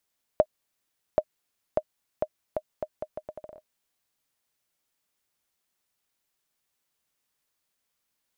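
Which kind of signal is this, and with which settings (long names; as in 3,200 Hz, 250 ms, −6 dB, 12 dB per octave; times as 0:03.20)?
bouncing ball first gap 0.78 s, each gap 0.76, 617 Hz, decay 57 ms −7.5 dBFS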